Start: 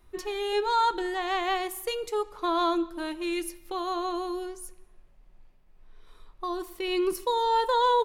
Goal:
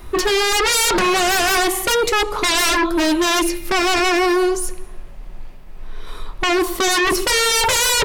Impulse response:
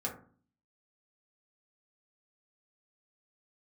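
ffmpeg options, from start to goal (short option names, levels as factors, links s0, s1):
-filter_complex "[0:a]acrossover=split=8000[s0][s1];[s1]acompressor=threshold=0.00282:ratio=4:attack=1:release=60[s2];[s0][s2]amix=inputs=2:normalize=0,aeval=exprs='0.211*sin(PI/2*8.91*val(0)/0.211)':c=same"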